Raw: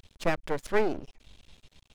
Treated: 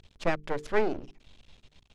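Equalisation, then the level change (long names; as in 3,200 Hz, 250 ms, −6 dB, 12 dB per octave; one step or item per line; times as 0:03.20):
high-frequency loss of the air 56 metres
mains-hum notches 50/100/150/200/250/300/350/400/450 Hz
0.0 dB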